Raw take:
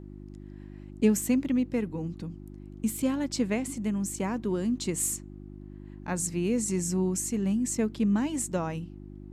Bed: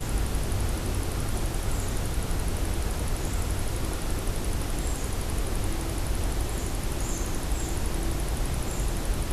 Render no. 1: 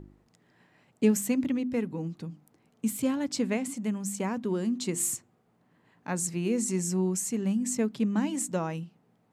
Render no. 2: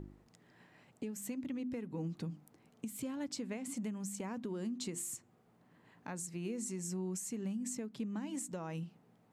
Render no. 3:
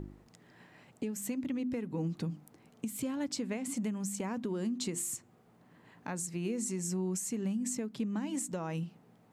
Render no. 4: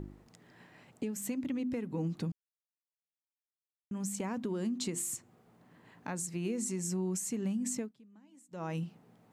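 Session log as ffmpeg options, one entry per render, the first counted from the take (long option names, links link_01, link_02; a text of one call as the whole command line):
ffmpeg -i in.wav -af "bandreject=frequency=50:width_type=h:width=4,bandreject=frequency=100:width_type=h:width=4,bandreject=frequency=150:width_type=h:width=4,bandreject=frequency=200:width_type=h:width=4,bandreject=frequency=250:width_type=h:width=4,bandreject=frequency=300:width_type=h:width=4,bandreject=frequency=350:width_type=h:width=4" out.wav
ffmpeg -i in.wav -af "acompressor=threshold=-34dB:ratio=8,alimiter=level_in=7dB:limit=-24dB:level=0:latency=1:release=404,volume=-7dB" out.wav
ffmpeg -i in.wav -af "volume=5dB" out.wav
ffmpeg -i in.wav -filter_complex "[0:a]asplit=5[link_01][link_02][link_03][link_04][link_05];[link_01]atrim=end=2.32,asetpts=PTS-STARTPTS,afade=type=out:start_time=2.316:duration=0.004:curve=hsin[link_06];[link_02]atrim=start=2.32:end=3.91,asetpts=PTS-STARTPTS,volume=0[link_07];[link_03]atrim=start=3.91:end=7.93,asetpts=PTS-STARTPTS,afade=type=in:duration=0.004:curve=hsin,afade=type=out:start_time=3.9:duration=0.12:silence=0.0630957[link_08];[link_04]atrim=start=7.93:end=8.51,asetpts=PTS-STARTPTS,volume=-24dB[link_09];[link_05]atrim=start=8.51,asetpts=PTS-STARTPTS,afade=type=in:duration=0.12:silence=0.0630957[link_10];[link_06][link_07][link_08][link_09][link_10]concat=n=5:v=0:a=1" out.wav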